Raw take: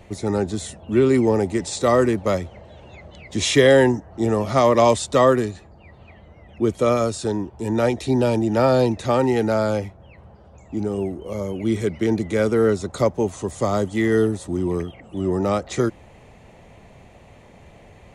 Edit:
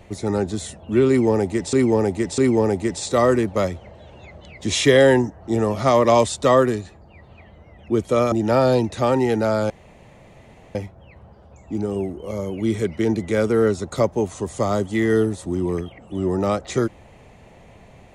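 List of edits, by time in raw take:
0:01.08–0:01.73: repeat, 3 plays
0:07.02–0:08.39: remove
0:09.77: splice in room tone 1.05 s

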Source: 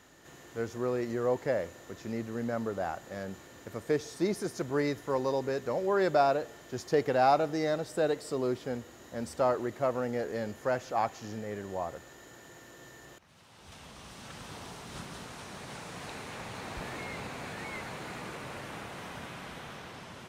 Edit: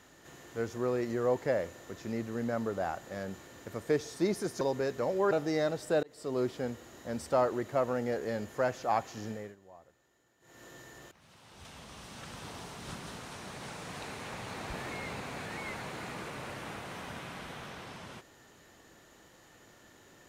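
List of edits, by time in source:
0:04.61–0:05.29: remove
0:05.99–0:07.38: remove
0:08.10–0:08.48: fade in
0:11.38–0:12.72: duck −19.5 dB, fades 0.25 s

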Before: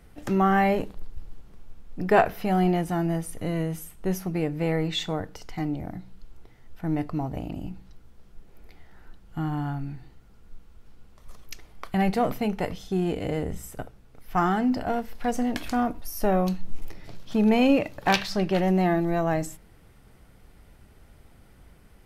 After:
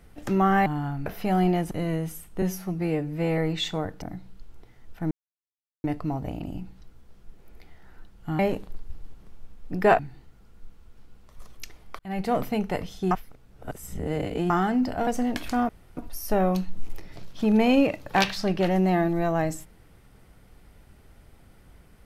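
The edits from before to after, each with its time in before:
0:00.66–0:02.26: swap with 0:09.48–0:09.88
0:02.91–0:03.38: remove
0:04.09–0:04.73: time-stretch 1.5×
0:05.37–0:05.84: remove
0:06.93: splice in silence 0.73 s
0:11.88–0:12.25: fade in
0:13.00–0:14.39: reverse
0:14.96–0:15.27: remove
0:15.89: splice in room tone 0.28 s

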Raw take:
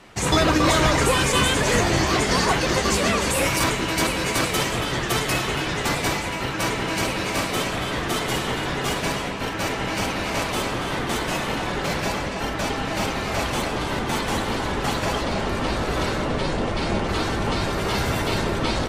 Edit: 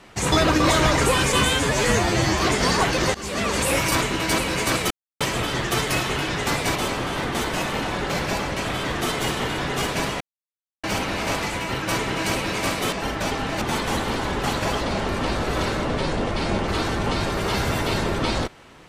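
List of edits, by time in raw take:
0:01.45–0:02.08: time-stretch 1.5×
0:02.83–0:03.26: fade in, from −20 dB
0:04.59: splice in silence 0.30 s
0:06.14–0:07.64: swap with 0:10.50–0:12.31
0:09.28–0:09.91: silence
0:13.00–0:14.02: remove

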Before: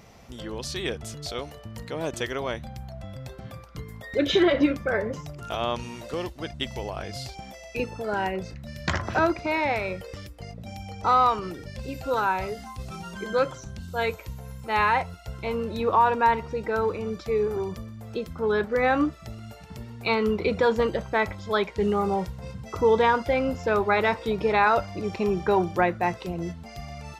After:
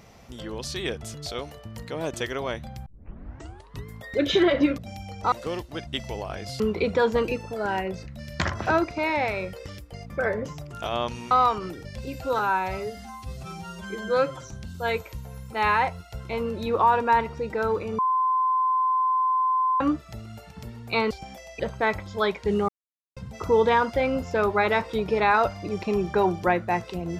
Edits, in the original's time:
0:02.86: tape start 1.01 s
0:04.78–0:05.99: swap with 0:10.58–0:11.12
0:07.27–0:07.76: swap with 0:20.24–0:20.92
0:12.20–0:13.55: time-stretch 1.5×
0:17.12–0:18.94: beep over 1,030 Hz −19.5 dBFS
0:22.01–0:22.49: silence

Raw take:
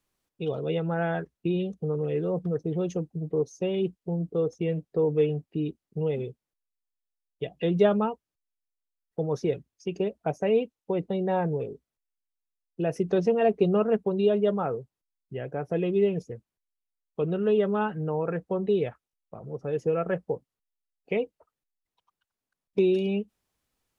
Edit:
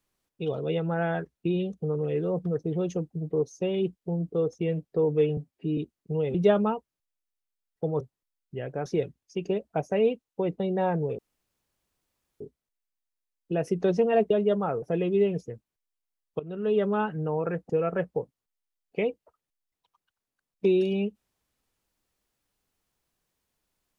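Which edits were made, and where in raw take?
0:05.37–0:05.64: time-stretch 1.5×
0:06.21–0:07.70: remove
0:11.69: splice in room tone 1.22 s
0:13.59–0:14.27: remove
0:14.79–0:15.64: move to 0:09.36
0:17.21–0:17.64: fade in, from −17.5 dB
0:18.51–0:19.83: remove

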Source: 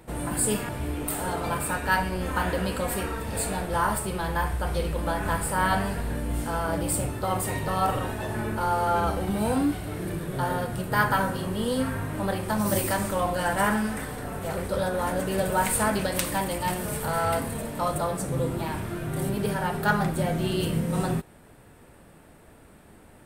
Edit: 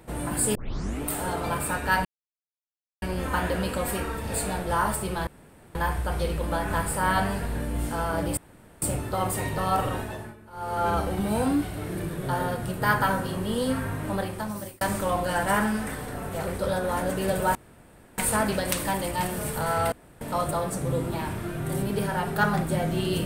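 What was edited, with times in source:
0:00.55: tape start 0.47 s
0:02.05: splice in silence 0.97 s
0:04.30: splice in room tone 0.48 s
0:06.92: splice in room tone 0.45 s
0:08.08–0:09.00: duck −20 dB, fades 0.38 s
0:12.21–0:12.91: fade out
0:15.65: splice in room tone 0.63 s
0:17.39–0:17.68: fill with room tone

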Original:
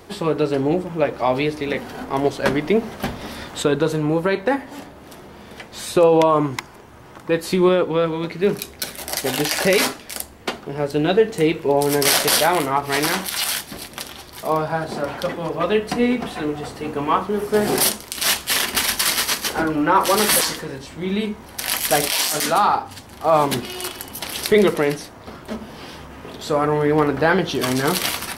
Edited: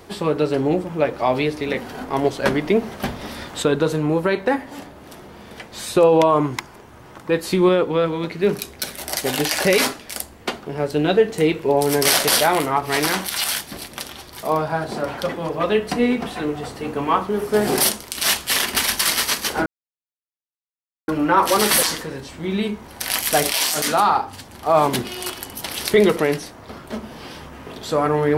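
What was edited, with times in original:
0:19.66: splice in silence 1.42 s

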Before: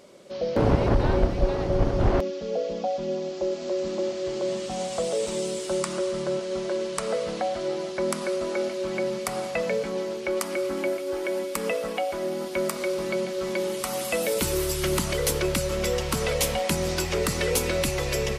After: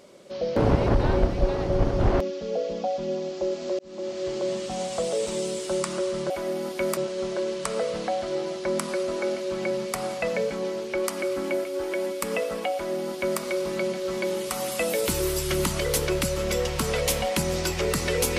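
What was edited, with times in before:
0:03.79–0:04.22: fade in linear
0:12.06–0:12.73: duplicate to 0:06.30

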